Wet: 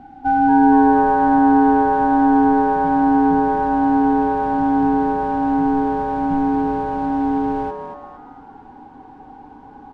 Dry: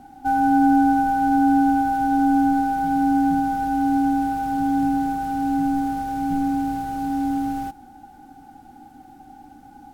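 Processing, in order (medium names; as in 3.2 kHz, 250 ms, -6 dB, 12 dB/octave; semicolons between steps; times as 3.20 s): low-pass 2.8 kHz 12 dB/octave; on a send: frequency-shifting echo 232 ms, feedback 37%, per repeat +150 Hz, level -9 dB; on the sum: trim +3.5 dB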